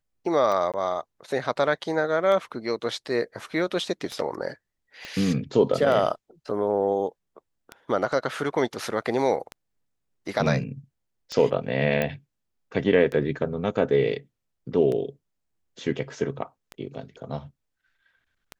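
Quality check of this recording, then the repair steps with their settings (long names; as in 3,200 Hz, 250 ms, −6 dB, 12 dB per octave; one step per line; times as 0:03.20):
scratch tick 33 1/3 rpm −19 dBFS
0:00.72–0:00.74: drop-out 17 ms
0:05.05: click −22 dBFS
0:12.02: click −12 dBFS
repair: click removal
repair the gap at 0:00.72, 17 ms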